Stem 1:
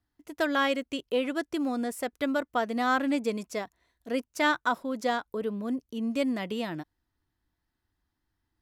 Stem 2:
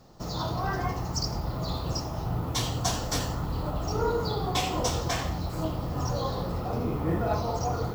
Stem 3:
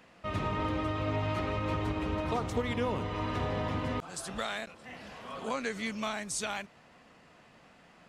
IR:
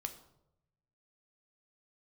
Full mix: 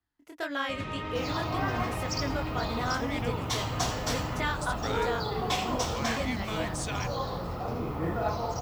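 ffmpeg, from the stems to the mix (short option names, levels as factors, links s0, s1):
-filter_complex "[0:a]acrossover=split=140|3000[s0][s1][s2];[s1]acompressor=threshold=0.0224:ratio=1.5[s3];[s0][s3][s2]amix=inputs=3:normalize=0,flanger=delay=17.5:depth=7.7:speed=1.8,volume=0.631[s4];[1:a]adelay=950,volume=0.562[s5];[2:a]equalizer=f=810:t=o:w=1.6:g=-6.5,adelay=450,volume=0.631[s6];[s4][s5][s6]amix=inputs=3:normalize=0,equalizer=f=1600:w=0.38:g=5.5"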